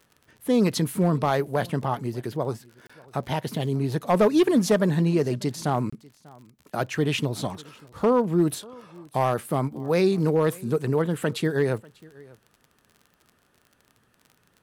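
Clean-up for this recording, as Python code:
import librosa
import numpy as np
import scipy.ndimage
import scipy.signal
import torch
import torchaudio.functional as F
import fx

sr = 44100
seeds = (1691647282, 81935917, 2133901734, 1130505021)

y = fx.fix_declip(x, sr, threshold_db=-13.0)
y = fx.fix_declick_ar(y, sr, threshold=6.5)
y = fx.fix_interpolate(y, sr, at_s=(2.87, 5.9), length_ms=25.0)
y = fx.fix_echo_inverse(y, sr, delay_ms=593, level_db=-24.0)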